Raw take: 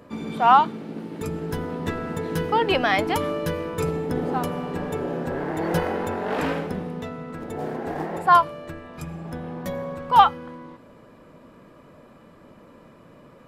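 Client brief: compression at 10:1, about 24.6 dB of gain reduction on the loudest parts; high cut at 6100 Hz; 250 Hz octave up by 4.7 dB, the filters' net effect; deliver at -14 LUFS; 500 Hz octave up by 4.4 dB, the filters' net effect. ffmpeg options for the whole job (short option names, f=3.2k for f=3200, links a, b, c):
-af "lowpass=6.1k,equalizer=f=250:t=o:g=5,equalizer=f=500:t=o:g=4,acompressor=threshold=-33dB:ratio=10,volume=23.5dB"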